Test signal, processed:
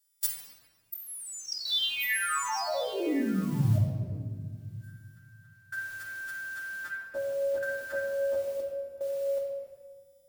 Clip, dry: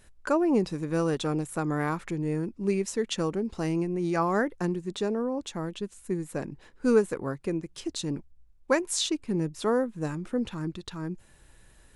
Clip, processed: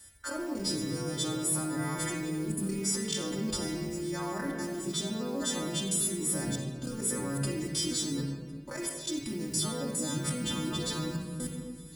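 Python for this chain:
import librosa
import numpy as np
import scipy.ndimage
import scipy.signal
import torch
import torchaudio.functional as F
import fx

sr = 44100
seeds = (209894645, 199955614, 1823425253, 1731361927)

p1 = fx.freq_snap(x, sr, grid_st=2)
p2 = p1 + fx.echo_single(p1, sr, ms=1056, db=-19.0, dry=0)
p3 = fx.level_steps(p2, sr, step_db=23)
p4 = scipy.signal.sosfilt(scipy.signal.butter(2, 58.0, 'highpass', fs=sr, output='sos'), p3)
p5 = fx.high_shelf(p4, sr, hz=3200.0, db=8.5)
p6 = fx.over_compress(p5, sr, threshold_db=-35.0, ratio=-1.0)
p7 = fx.low_shelf(p6, sr, hz=130.0, db=10.5)
p8 = fx.mod_noise(p7, sr, seeds[0], snr_db=22)
y = fx.room_shoebox(p8, sr, seeds[1], volume_m3=2200.0, walls='mixed', distance_m=2.5)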